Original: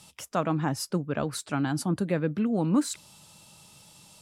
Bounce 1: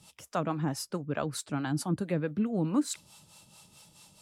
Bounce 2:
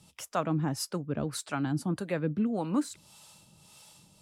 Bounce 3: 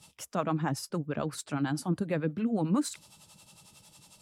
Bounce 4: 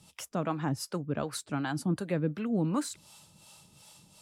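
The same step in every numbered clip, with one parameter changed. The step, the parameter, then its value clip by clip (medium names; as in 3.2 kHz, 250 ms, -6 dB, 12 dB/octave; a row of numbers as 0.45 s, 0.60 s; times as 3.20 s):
harmonic tremolo, rate: 4.6 Hz, 1.7 Hz, 11 Hz, 2.7 Hz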